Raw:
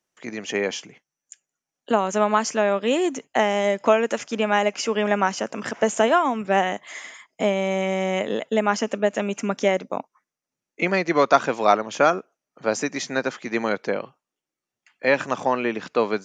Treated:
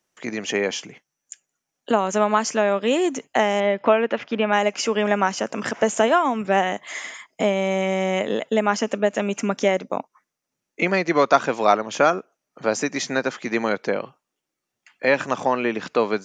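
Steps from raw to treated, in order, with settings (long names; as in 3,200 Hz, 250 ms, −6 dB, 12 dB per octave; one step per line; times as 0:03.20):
0:03.60–0:04.53: low-pass filter 3,600 Hz 24 dB per octave
in parallel at 0 dB: downward compressor, threshold −30 dBFS, peak gain reduction 18.5 dB
on the sum: level −1 dB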